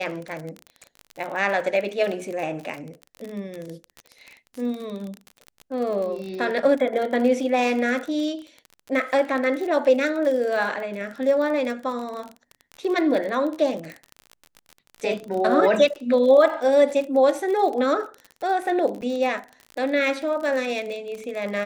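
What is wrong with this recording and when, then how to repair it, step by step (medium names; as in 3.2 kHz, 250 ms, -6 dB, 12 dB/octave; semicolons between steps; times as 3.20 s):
crackle 38 per s -29 dBFS
19.01–19.02 s: dropout 7.5 ms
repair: de-click; interpolate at 19.01 s, 7.5 ms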